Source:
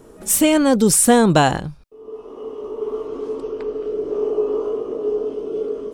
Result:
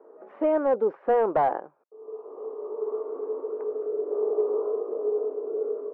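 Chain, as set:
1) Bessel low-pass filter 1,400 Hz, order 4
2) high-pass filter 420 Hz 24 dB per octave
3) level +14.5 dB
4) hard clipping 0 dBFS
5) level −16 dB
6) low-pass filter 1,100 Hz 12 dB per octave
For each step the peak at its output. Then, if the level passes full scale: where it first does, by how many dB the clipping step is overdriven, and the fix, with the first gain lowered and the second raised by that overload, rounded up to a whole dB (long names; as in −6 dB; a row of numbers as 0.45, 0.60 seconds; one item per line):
−3.0, −5.0, +9.5, 0.0, −16.0, −15.5 dBFS
step 3, 9.5 dB
step 3 +4.5 dB, step 5 −6 dB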